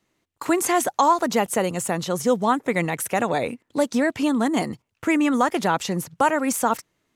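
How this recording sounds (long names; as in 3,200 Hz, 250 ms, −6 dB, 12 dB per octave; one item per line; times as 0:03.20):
background noise floor −75 dBFS
spectral slope −4.0 dB per octave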